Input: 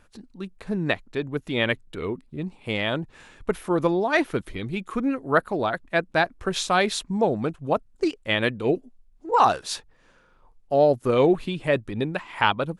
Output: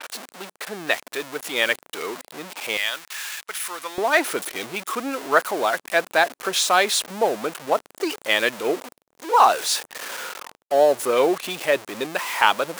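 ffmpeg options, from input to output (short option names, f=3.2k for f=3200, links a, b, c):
-af "aeval=exprs='val(0)+0.5*0.0376*sgn(val(0))':c=same,asetnsamples=n=441:p=0,asendcmd='2.77 highpass f 1500;3.98 highpass f 490',highpass=600,agate=range=-33dB:threshold=-41dB:ratio=3:detection=peak,adynamicequalizer=threshold=0.0112:dfrequency=5800:dqfactor=0.7:tfrequency=5800:tqfactor=0.7:attack=5:release=100:ratio=0.375:range=2:mode=boostabove:tftype=highshelf,volume=3dB"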